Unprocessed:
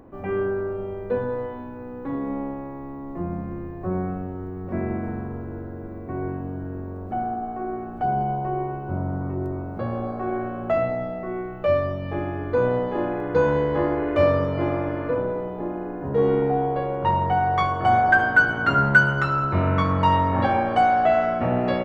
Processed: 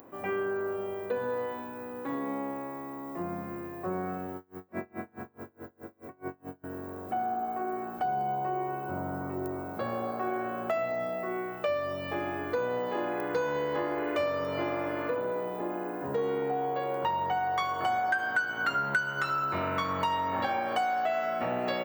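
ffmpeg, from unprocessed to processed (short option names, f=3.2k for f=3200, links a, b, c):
-filter_complex "[0:a]asettb=1/sr,asplit=3[a][b][c];[a]atrim=end=4.364[d];[b]atrim=start=4.36:end=6.64,asetpts=PTS-STARTPTS,afade=t=in:d=0.004:c=qsin,afade=t=out:st=2.276:d=0.004:c=qsin,aeval=exprs='val(0)*pow(10,-33*(0.5-0.5*cos(2*PI*4.7*n/s))/20)':c=same[e];[c]atrim=start=6.636[f];[d][e]acrossfade=d=0.004:c1=hsin:c2=qsin[g];[g][f]acrossfade=d=0.004:c1=qsin:c2=hsin,highpass=67,aemphasis=mode=production:type=riaa,acompressor=threshold=-28dB:ratio=4"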